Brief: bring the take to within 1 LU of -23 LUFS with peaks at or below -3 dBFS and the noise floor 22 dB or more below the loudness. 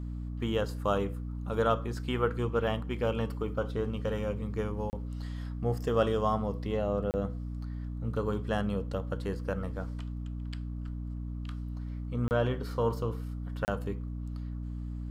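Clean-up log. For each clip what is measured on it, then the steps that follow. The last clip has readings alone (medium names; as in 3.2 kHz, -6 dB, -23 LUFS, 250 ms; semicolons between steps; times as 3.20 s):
dropouts 4; longest dropout 29 ms; hum 60 Hz; highest harmonic 300 Hz; hum level -34 dBFS; loudness -33.0 LUFS; peak level -13.5 dBFS; loudness target -23.0 LUFS
-> interpolate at 4.90/7.11/12.28/13.65 s, 29 ms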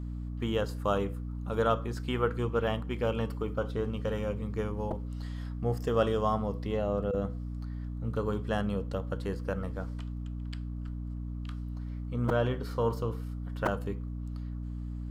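dropouts 0; hum 60 Hz; highest harmonic 300 Hz; hum level -34 dBFS
-> hum notches 60/120/180/240/300 Hz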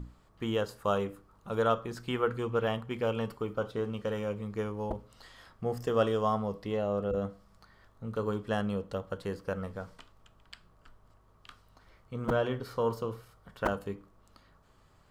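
hum not found; loudness -33.0 LUFS; peak level -14.0 dBFS; loudness target -23.0 LUFS
-> trim +10 dB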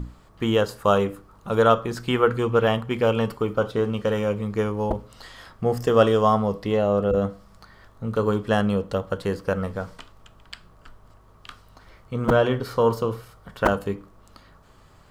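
loudness -23.0 LUFS; peak level -4.0 dBFS; noise floor -53 dBFS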